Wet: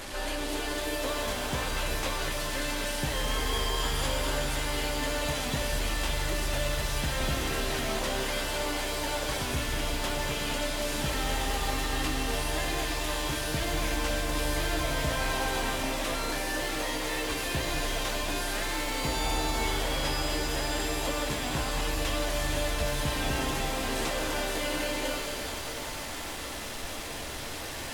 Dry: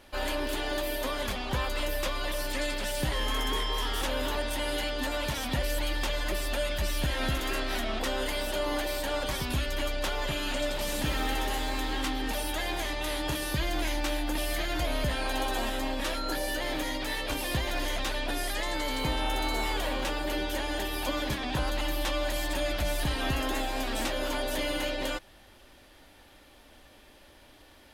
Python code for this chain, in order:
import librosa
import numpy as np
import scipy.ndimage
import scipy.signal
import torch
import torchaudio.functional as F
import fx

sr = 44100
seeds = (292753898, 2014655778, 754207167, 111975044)

y = fx.delta_mod(x, sr, bps=64000, step_db=-31.5)
y = fx.rev_shimmer(y, sr, seeds[0], rt60_s=3.2, semitones=7, shimmer_db=-2, drr_db=3.5)
y = F.gain(torch.from_numpy(y), -2.5).numpy()